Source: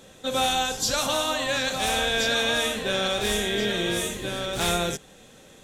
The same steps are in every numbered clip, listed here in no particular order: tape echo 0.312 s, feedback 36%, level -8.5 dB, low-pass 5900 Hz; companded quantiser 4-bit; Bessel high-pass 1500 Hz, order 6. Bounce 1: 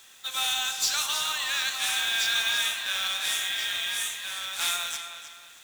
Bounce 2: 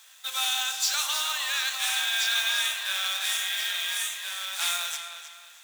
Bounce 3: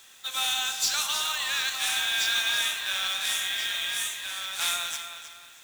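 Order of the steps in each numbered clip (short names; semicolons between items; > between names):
Bessel high-pass > companded quantiser > tape echo; companded quantiser > Bessel high-pass > tape echo; Bessel high-pass > tape echo > companded quantiser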